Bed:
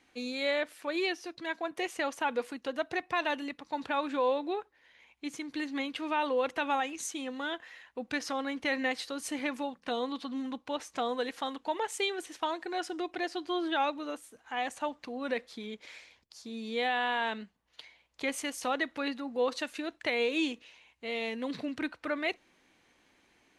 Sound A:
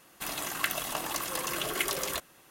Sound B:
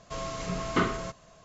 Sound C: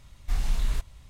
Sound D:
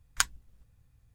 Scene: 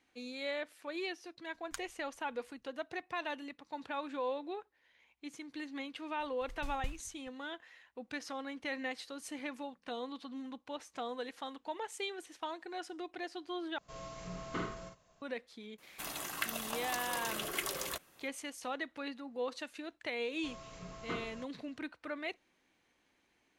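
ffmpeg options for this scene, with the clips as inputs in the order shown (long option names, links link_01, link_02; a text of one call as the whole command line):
ffmpeg -i bed.wav -i cue0.wav -i cue1.wav -i cue2.wav -i cue3.wav -filter_complex "[2:a]asplit=2[link_01][link_02];[0:a]volume=-8dB[link_03];[3:a]aeval=exprs='val(0)*pow(10,-31*if(lt(mod(4.7*n/s,1),2*abs(4.7)/1000),1-mod(4.7*n/s,1)/(2*abs(4.7)/1000),(mod(4.7*n/s,1)-2*abs(4.7)/1000)/(1-2*abs(4.7)/1000))/20)':channel_layout=same[link_04];[link_01]asplit=2[link_05][link_06];[link_06]adelay=50,volume=-4dB[link_07];[link_05][link_07]amix=inputs=2:normalize=0[link_08];[link_03]asplit=2[link_09][link_10];[link_09]atrim=end=13.784[link_11];[link_08]atrim=end=1.44,asetpts=PTS-STARTPTS,volume=-14dB[link_12];[link_10]atrim=start=15.216[link_13];[4:a]atrim=end=1.14,asetpts=PTS-STARTPTS,volume=-18dB,afade=type=in:duration=0.004:curve=hsin,afade=type=out:start_time=1.136:duration=0.004:curve=hsin,adelay=1540[link_14];[link_04]atrim=end=1.09,asetpts=PTS-STARTPTS,volume=-8.5dB,afade=type=in:duration=0.004:curve=hsin,afade=type=out:start_time=1.086:duration=0.004:curve=hsin,adelay=6200[link_15];[1:a]atrim=end=2.5,asetpts=PTS-STARTPTS,volume=-6.5dB,afade=type=in:duration=0.004:curve=hsin,afade=type=out:start_time=2.496:duration=0.004:curve=hsin,adelay=15780[link_16];[link_02]atrim=end=1.44,asetpts=PTS-STARTPTS,volume=-15.5dB,afade=type=in:duration=0.004:curve=hsin,afade=type=out:start_time=1.436:duration=0.004:curve=hsin,adelay=20330[link_17];[link_11][link_12]acrossfade=duration=0.004:curve1=hsin:curve2=hsin[link_18];[link_18][link_13]acrossfade=duration=0.004:curve1=hsin:curve2=hsin[link_19];[link_19][link_14][link_15][link_16][link_17]amix=inputs=5:normalize=0" out.wav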